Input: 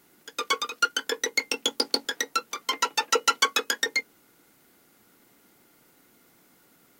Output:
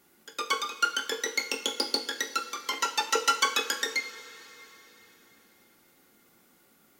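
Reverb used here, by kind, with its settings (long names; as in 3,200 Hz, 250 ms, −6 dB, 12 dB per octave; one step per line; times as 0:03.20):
coupled-rooms reverb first 0.39 s, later 4 s, from −18 dB, DRR 4 dB
level −4 dB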